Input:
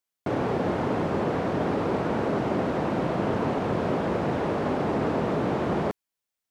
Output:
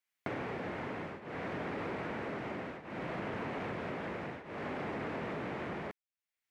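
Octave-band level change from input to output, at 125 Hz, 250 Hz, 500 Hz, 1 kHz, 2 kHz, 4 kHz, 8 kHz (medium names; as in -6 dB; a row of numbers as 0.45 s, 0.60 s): -14.5 dB, -14.5 dB, -14.0 dB, -12.5 dB, -6.0 dB, -9.5 dB, no reading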